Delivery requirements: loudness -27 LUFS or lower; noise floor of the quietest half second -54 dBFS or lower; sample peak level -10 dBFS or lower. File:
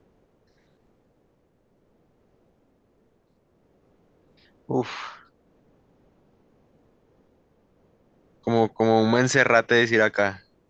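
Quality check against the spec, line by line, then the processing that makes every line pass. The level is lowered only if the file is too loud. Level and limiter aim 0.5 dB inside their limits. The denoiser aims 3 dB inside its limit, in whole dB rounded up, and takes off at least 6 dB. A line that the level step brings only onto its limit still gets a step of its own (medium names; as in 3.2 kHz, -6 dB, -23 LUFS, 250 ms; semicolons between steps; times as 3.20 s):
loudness -21.5 LUFS: fail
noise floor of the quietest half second -65 dBFS: pass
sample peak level -3.5 dBFS: fail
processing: trim -6 dB; peak limiter -10.5 dBFS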